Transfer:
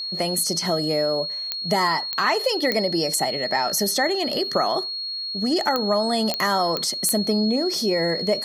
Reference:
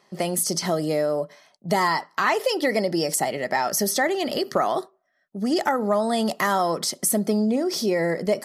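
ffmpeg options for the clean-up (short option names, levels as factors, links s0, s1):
-af "adeclick=t=4,bandreject=f=4300:w=30"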